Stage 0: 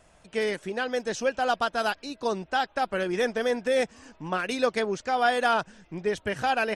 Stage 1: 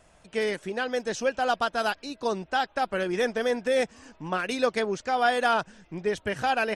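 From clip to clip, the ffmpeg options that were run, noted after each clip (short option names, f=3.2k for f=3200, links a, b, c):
-af anull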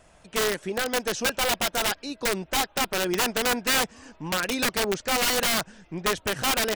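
-af "aeval=exprs='(mod(10.6*val(0)+1,2)-1)/10.6':c=same,volume=2.5dB"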